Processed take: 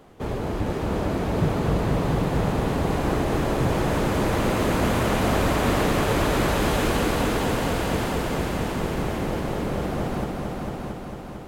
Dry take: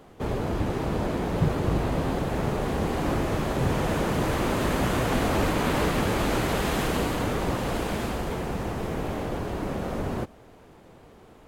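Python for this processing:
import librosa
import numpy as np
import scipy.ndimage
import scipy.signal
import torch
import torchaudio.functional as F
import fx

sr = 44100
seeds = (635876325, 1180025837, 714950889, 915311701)

y = np.clip(10.0 ** (14.5 / 20.0) * x, -1.0, 1.0) / 10.0 ** (14.5 / 20.0)
y = fx.echo_heads(y, sr, ms=225, heads='all three', feedback_pct=61, wet_db=-8.0)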